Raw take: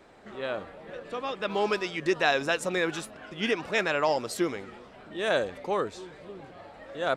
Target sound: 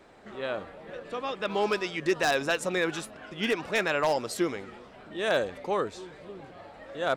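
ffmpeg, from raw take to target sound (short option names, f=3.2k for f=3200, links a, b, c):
-af "aeval=exprs='0.15*(abs(mod(val(0)/0.15+3,4)-2)-1)':c=same"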